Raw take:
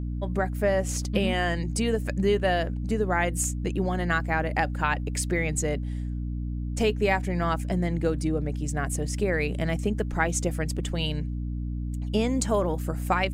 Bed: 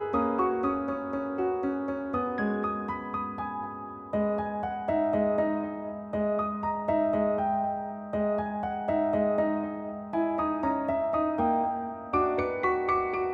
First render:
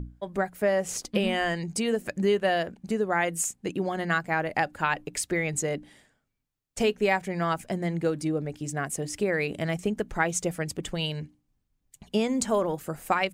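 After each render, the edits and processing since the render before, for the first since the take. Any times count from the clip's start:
mains-hum notches 60/120/180/240/300 Hz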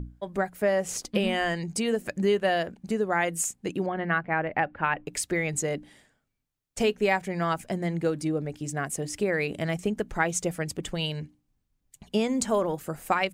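0:03.86–0:05.07: low-pass filter 2,700 Hz 24 dB per octave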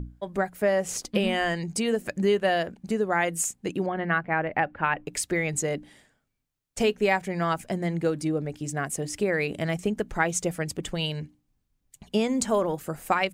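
level +1 dB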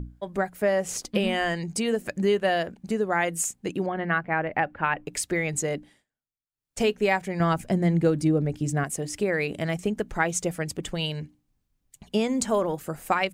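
0:05.76–0:06.79: duck −23 dB, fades 0.29 s
0:07.40–0:08.84: low-shelf EQ 340 Hz +8.5 dB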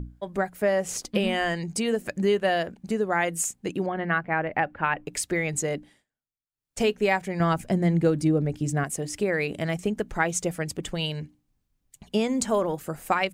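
no processing that can be heard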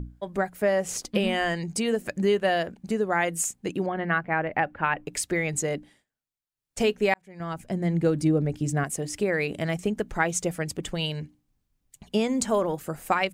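0:07.14–0:08.21: fade in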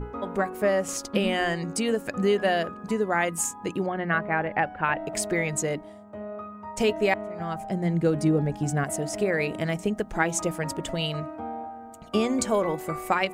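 mix in bed −9 dB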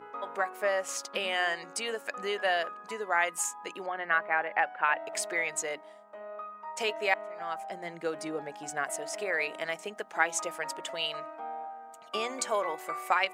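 high-pass filter 760 Hz 12 dB per octave
high-shelf EQ 6,300 Hz −6.5 dB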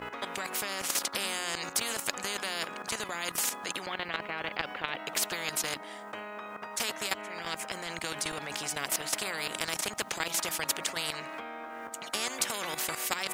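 output level in coarse steps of 12 dB
every bin compressed towards the loudest bin 4 to 1

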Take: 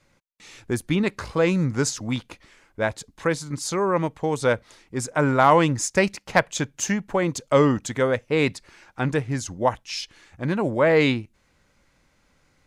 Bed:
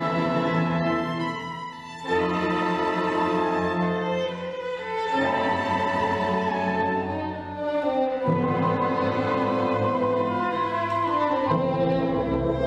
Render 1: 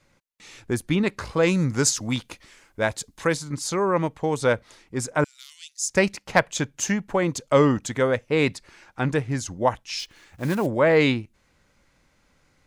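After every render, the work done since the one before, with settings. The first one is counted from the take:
0:01.43–0:03.37: high-shelf EQ 4,000 Hz +8 dB
0:05.24–0:05.89: inverse Chebyshev high-pass filter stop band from 700 Hz, stop band 80 dB
0:09.99–0:10.68: one scale factor per block 5 bits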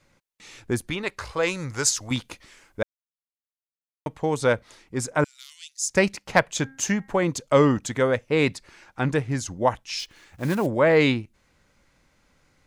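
0:00.90–0:02.11: parametric band 210 Hz −14 dB 1.5 octaves
0:02.83–0:04.06: silence
0:06.44–0:07.20: hum removal 268.3 Hz, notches 8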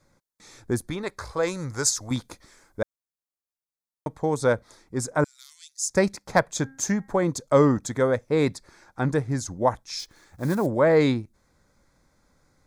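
parametric band 2,600 Hz −10 dB 0.88 octaves
notch filter 2,900 Hz, Q 5.5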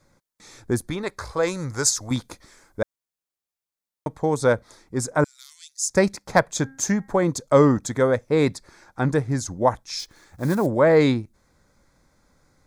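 level +2.5 dB

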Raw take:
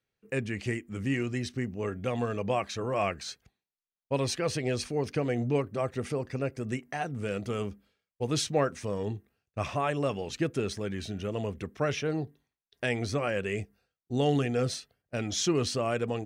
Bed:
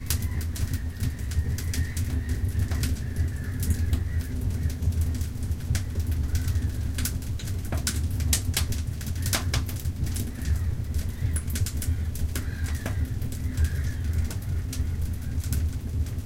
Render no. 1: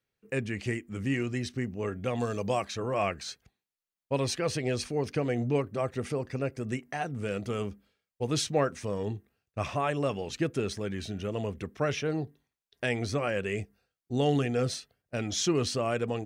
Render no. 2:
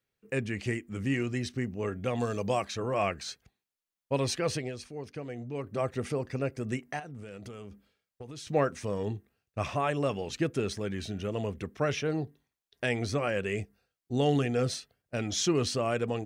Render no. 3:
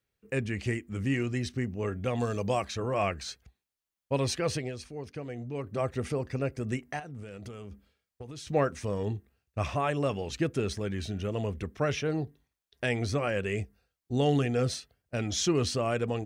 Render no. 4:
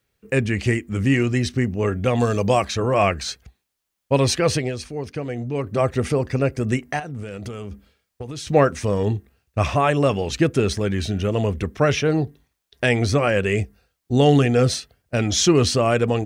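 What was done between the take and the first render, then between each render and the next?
0:02.20–0:02.65: high shelf with overshoot 3,500 Hz +8 dB, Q 1.5
0:04.54–0:05.74: duck −10 dB, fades 0.18 s; 0:06.99–0:08.47: downward compressor 16 to 1, threshold −39 dBFS
parametric band 61 Hz +12.5 dB 0.85 octaves
level +10.5 dB

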